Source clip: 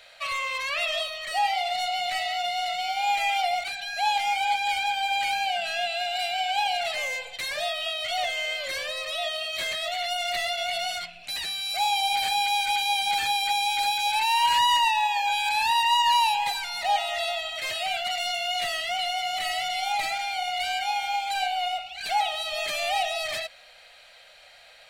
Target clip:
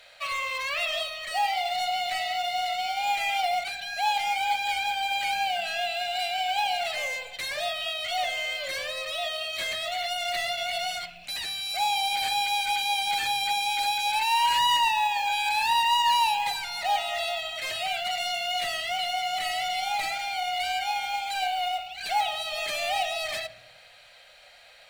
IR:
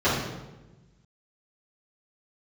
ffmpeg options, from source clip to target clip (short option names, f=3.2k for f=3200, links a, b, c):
-filter_complex "[0:a]acrusher=bits=6:mode=log:mix=0:aa=0.000001,asplit=2[a][b];[1:a]atrim=start_sample=2205,lowshelf=f=130:g=10.5[c];[b][c]afir=irnorm=-1:irlink=0,volume=-31dB[d];[a][d]amix=inputs=2:normalize=0,volume=-1.5dB"